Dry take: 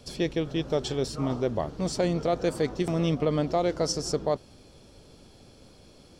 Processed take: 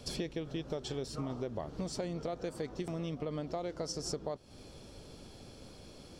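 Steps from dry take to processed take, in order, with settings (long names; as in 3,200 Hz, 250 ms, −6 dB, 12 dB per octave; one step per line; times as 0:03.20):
downward compressor 12 to 1, threshold −35 dBFS, peak gain reduction 15 dB
level +1 dB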